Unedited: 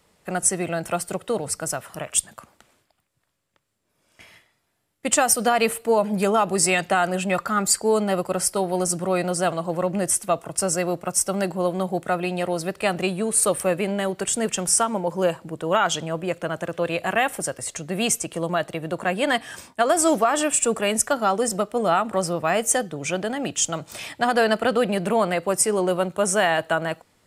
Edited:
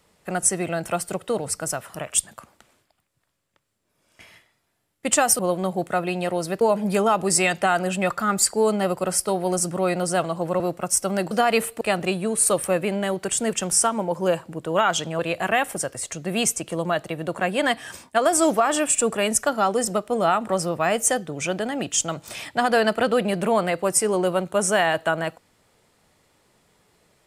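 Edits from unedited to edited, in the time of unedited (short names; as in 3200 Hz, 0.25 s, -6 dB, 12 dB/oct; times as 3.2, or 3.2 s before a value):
5.39–5.89 swap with 11.55–12.77
9.88–10.84 cut
16.15–16.83 cut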